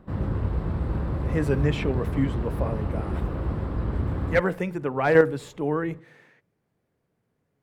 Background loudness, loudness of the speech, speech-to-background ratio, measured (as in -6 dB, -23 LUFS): -29.5 LUFS, -26.0 LUFS, 3.5 dB